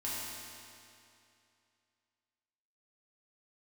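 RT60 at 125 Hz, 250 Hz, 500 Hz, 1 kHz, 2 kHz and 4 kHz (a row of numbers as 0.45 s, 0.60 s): 2.6 s, 2.6 s, 2.6 s, 2.6 s, 2.5 s, 2.4 s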